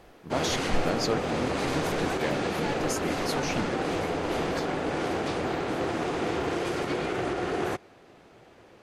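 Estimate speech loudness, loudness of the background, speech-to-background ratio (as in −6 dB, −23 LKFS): −34.5 LKFS, −29.5 LKFS, −5.0 dB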